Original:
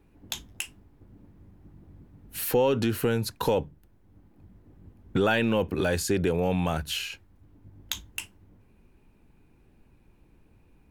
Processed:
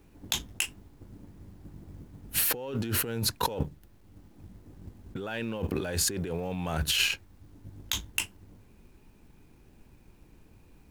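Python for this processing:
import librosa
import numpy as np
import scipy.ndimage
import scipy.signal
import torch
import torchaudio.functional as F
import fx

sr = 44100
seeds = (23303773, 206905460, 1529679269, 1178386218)

y = fx.law_mismatch(x, sr, coded='A')
y = fx.over_compress(y, sr, threshold_db=-35.0, ratio=-1.0)
y = y * 10.0 ** (4.0 / 20.0)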